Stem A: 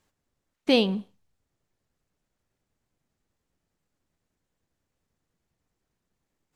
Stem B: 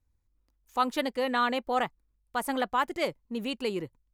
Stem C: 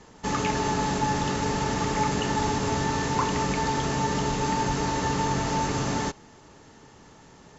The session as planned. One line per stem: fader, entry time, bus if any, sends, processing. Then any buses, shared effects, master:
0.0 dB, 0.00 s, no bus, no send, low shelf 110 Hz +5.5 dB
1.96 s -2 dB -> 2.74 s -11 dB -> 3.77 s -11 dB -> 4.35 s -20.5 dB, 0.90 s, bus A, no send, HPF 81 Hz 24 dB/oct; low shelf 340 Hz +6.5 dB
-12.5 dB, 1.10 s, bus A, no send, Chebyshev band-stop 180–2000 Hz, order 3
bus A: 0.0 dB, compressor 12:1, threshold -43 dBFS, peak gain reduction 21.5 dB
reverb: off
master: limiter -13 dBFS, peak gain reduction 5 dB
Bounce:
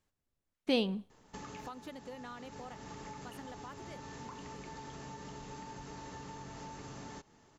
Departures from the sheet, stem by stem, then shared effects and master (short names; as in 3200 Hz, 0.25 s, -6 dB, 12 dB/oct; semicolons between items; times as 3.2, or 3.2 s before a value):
stem A 0.0 dB -> -9.5 dB; stem C: missing Chebyshev band-stop 180–2000 Hz, order 3